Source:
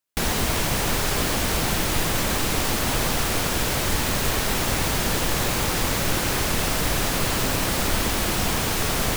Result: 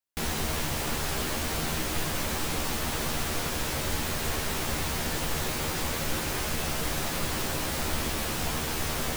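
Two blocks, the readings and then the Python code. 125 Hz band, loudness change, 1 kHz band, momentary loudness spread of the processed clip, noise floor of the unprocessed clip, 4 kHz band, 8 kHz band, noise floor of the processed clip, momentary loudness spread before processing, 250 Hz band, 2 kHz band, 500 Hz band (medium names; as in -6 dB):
-7.0 dB, -7.0 dB, -7.0 dB, 0 LU, -24 dBFS, -7.0 dB, -7.0 dB, -32 dBFS, 0 LU, -7.0 dB, -7.0 dB, -7.0 dB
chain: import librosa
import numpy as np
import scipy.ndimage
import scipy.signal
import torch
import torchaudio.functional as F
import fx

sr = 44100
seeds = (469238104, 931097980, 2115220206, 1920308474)

y = fx.doubler(x, sr, ms=13.0, db=-3.5)
y = F.gain(torch.from_numpy(y), -8.5).numpy()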